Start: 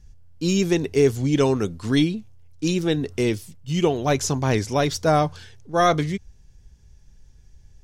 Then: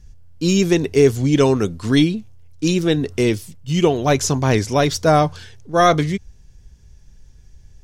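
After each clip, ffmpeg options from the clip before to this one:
-af "bandreject=f=830:w=26,volume=4.5dB"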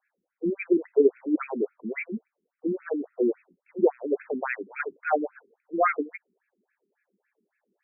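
-af "equalizer=f=125:t=o:w=1:g=11,equalizer=f=250:t=o:w=1:g=-9,equalizer=f=1k:t=o:w=1:g=-6,afftfilt=real='re*between(b*sr/1024,280*pow(1900/280,0.5+0.5*sin(2*PI*3.6*pts/sr))/1.41,280*pow(1900/280,0.5+0.5*sin(2*PI*3.6*pts/sr))*1.41)':imag='im*between(b*sr/1024,280*pow(1900/280,0.5+0.5*sin(2*PI*3.6*pts/sr))/1.41,280*pow(1900/280,0.5+0.5*sin(2*PI*3.6*pts/sr))*1.41)':win_size=1024:overlap=0.75"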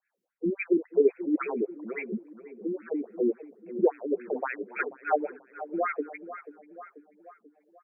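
-filter_complex "[0:a]asplit=2[a][b];[b]adelay=487,lowpass=f=1.5k:p=1,volume=-14dB,asplit=2[c][d];[d]adelay=487,lowpass=f=1.5k:p=1,volume=0.52,asplit=2[e][f];[f]adelay=487,lowpass=f=1.5k:p=1,volume=0.52,asplit=2[g][h];[h]adelay=487,lowpass=f=1.5k:p=1,volume=0.52,asplit=2[i][j];[j]adelay=487,lowpass=f=1.5k:p=1,volume=0.52[k];[a][c][e][g][i][k]amix=inputs=6:normalize=0,acrossover=split=410[l][m];[l]aeval=exprs='val(0)*(1-0.7/2+0.7/2*cos(2*PI*2.4*n/s))':c=same[n];[m]aeval=exprs='val(0)*(1-0.7/2-0.7/2*cos(2*PI*2.4*n/s))':c=same[o];[n][o]amix=inputs=2:normalize=0,volume=1.5dB"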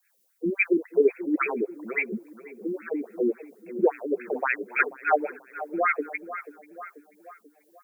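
-af "crystalizer=i=10:c=0"

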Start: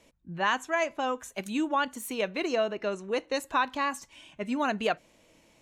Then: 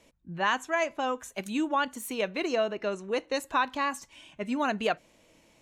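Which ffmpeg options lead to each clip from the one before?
-af anull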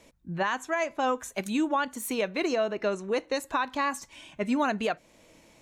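-af "equalizer=f=2.9k:t=o:w=0.23:g=-4,alimiter=limit=-22dB:level=0:latency=1:release=309,volume=4.5dB"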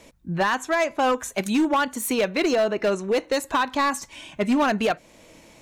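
-af "volume=23dB,asoftclip=hard,volume=-23dB,volume=7dB"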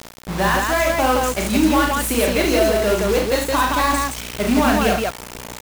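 -filter_complex "[0:a]aeval=exprs='val(0)+0.02*(sin(2*PI*60*n/s)+sin(2*PI*2*60*n/s)/2+sin(2*PI*3*60*n/s)/3+sin(2*PI*4*60*n/s)/4+sin(2*PI*5*60*n/s)/5)':c=same,acrusher=bits=4:mix=0:aa=0.000001,asplit=2[a][b];[b]aecho=0:1:37.9|69.97|169.1:0.708|0.501|0.794[c];[a][c]amix=inputs=2:normalize=0,volume=1dB"

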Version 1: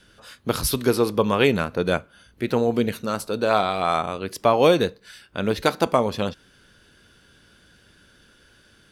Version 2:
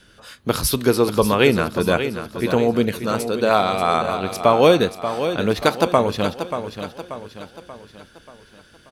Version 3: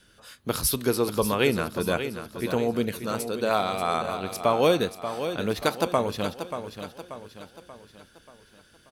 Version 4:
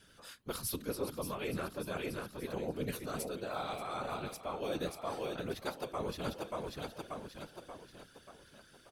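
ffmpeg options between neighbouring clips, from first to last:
-af "aecho=1:1:584|1168|1752|2336|2920:0.335|0.157|0.074|0.0348|0.0163,volume=3dB"
-af "highshelf=f=7.7k:g=8,volume=-7.5dB"
-af "areverse,acompressor=threshold=-31dB:ratio=10,areverse,afftfilt=real='hypot(re,im)*cos(2*PI*random(0))':imag='hypot(re,im)*sin(2*PI*random(1))':win_size=512:overlap=0.75,volume=2.5dB"

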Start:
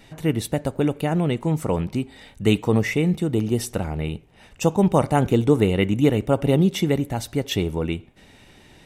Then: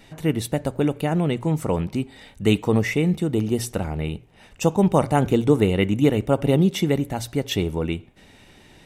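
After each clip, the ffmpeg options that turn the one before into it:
-af "bandreject=f=60:t=h:w=6,bandreject=f=120:t=h:w=6"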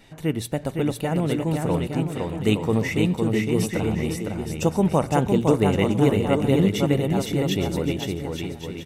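-af "aecho=1:1:510|867|1117|1292|1414:0.631|0.398|0.251|0.158|0.1,volume=-2.5dB"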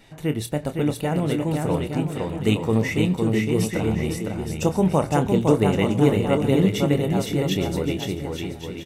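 -filter_complex "[0:a]asplit=2[a][b];[b]adelay=27,volume=-10.5dB[c];[a][c]amix=inputs=2:normalize=0"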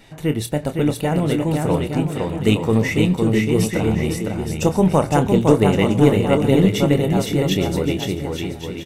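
-af "aeval=exprs='0.562*(cos(1*acos(clip(val(0)/0.562,-1,1)))-cos(1*PI/2))+0.0282*(cos(4*acos(clip(val(0)/0.562,-1,1)))-cos(4*PI/2))+0.00355*(cos(6*acos(clip(val(0)/0.562,-1,1)))-cos(6*PI/2))':c=same,volume=4dB"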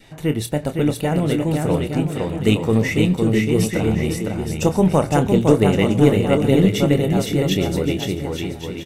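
-af "adynamicequalizer=threshold=0.01:dfrequency=960:dqfactor=3.1:tfrequency=960:tqfactor=3.1:attack=5:release=100:ratio=0.375:range=2.5:mode=cutabove:tftype=bell"

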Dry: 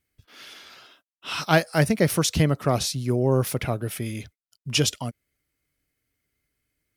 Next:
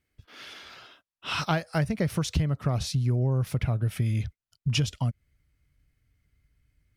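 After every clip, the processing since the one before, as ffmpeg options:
-af "lowpass=f=3.9k:p=1,asubboost=boost=6.5:cutoff=140,acompressor=threshold=-25dB:ratio=6,volume=2dB"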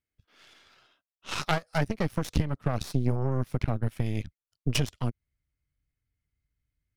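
-af "aeval=exprs='0.266*(cos(1*acos(clip(val(0)/0.266,-1,1)))-cos(1*PI/2))+0.106*(cos(2*acos(clip(val(0)/0.266,-1,1)))-cos(2*PI/2))+0.0211*(cos(6*acos(clip(val(0)/0.266,-1,1)))-cos(6*PI/2))+0.0299*(cos(7*acos(clip(val(0)/0.266,-1,1)))-cos(7*PI/2))':c=same"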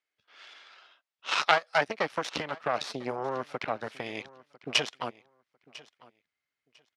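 -af "highpass=620,lowpass=4.6k,aecho=1:1:999|1998:0.0891|0.0169,volume=7dB"

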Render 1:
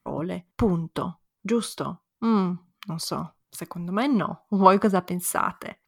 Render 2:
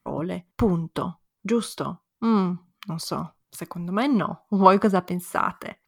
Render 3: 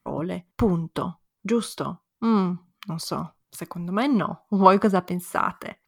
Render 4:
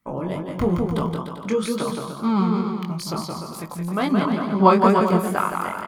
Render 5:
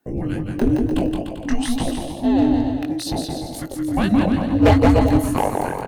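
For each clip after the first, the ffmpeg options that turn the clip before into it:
-af "deesser=0.6,volume=1dB"
-af anull
-filter_complex "[0:a]asplit=2[a][b];[b]aecho=0:1:170|297.5|393.1|464.8|518.6:0.631|0.398|0.251|0.158|0.1[c];[a][c]amix=inputs=2:normalize=0,flanger=delay=18.5:depth=5:speed=2.2,volume=3.5dB"
-af "volume=12dB,asoftclip=hard,volume=-12dB,afreqshift=-480,volume=3.5dB"

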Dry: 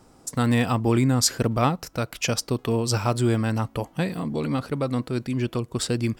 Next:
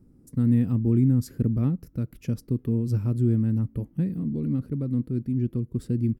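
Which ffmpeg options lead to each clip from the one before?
-af "firequalizer=gain_entry='entry(230,0);entry(730,-27);entry(1800,-22);entry(3200,-28);entry(7800,-26);entry(11000,-15)':delay=0.05:min_phase=1,volume=1.5dB"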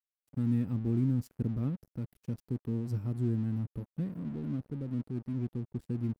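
-af "aeval=exprs='sgn(val(0))*max(abs(val(0))-0.00668,0)':c=same,volume=-8dB"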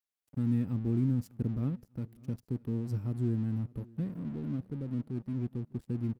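-af "aecho=1:1:601|1202:0.0631|0.024"

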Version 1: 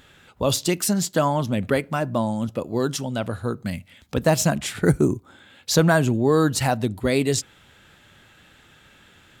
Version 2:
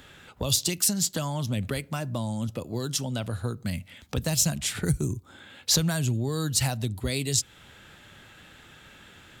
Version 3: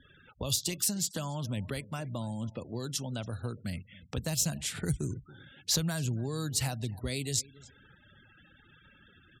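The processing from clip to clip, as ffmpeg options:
-filter_complex "[0:a]acrossover=split=130|3000[a][b][c];[b]acompressor=threshold=-34dB:ratio=6[d];[a][d][c]amix=inputs=3:normalize=0,volume=2dB"
-filter_complex "[0:a]asplit=2[a][b];[b]adelay=279,lowpass=f=4.4k:p=1,volume=-19.5dB,asplit=2[c][d];[d]adelay=279,lowpass=f=4.4k:p=1,volume=0.3[e];[a][c][e]amix=inputs=3:normalize=0,afftfilt=real='re*gte(hypot(re,im),0.00562)':imag='im*gte(hypot(re,im),0.00562)':win_size=1024:overlap=0.75,volume=-6dB"

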